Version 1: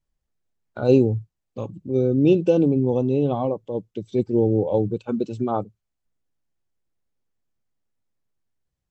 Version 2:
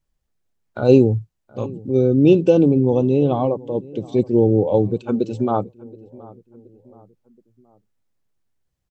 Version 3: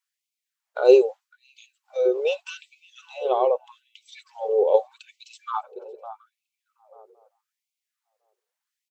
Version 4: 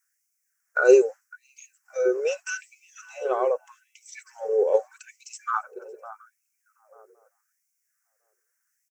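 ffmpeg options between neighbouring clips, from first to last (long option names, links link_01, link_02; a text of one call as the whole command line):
ffmpeg -i in.wav -filter_complex "[0:a]asplit=2[link_01][link_02];[link_02]adelay=724,lowpass=frequency=1300:poles=1,volume=-21dB,asplit=2[link_03][link_04];[link_04]adelay=724,lowpass=frequency=1300:poles=1,volume=0.48,asplit=2[link_05][link_06];[link_06]adelay=724,lowpass=frequency=1300:poles=1,volume=0.48[link_07];[link_01][link_03][link_05][link_07]amix=inputs=4:normalize=0,volume=4dB" out.wav
ffmpeg -i in.wav -filter_complex "[0:a]asplit=2[link_01][link_02];[link_02]adelay=557,lowpass=frequency=1200:poles=1,volume=-14.5dB,asplit=2[link_03][link_04];[link_04]adelay=557,lowpass=frequency=1200:poles=1,volume=0.29,asplit=2[link_05][link_06];[link_06]adelay=557,lowpass=frequency=1200:poles=1,volume=0.29[link_07];[link_01][link_03][link_05][link_07]amix=inputs=4:normalize=0,afftfilt=real='re*gte(b*sr/1024,350*pow(2100/350,0.5+0.5*sin(2*PI*0.81*pts/sr)))':imag='im*gte(b*sr/1024,350*pow(2100/350,0.5+0.5*sin(2*PI*0.81*pts/sr)))':win_size=1024:overlap=0.75,volume=1dB" out.wav
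ffmpeg -i in.wav -af "firequalizer=gain_entry='entry(240,0);entry(870,-9);entry(1500,13);entry(3600,-19);entry(5600,10)':delay=0.05:min_phase=1,volume=1.5dB" out.wav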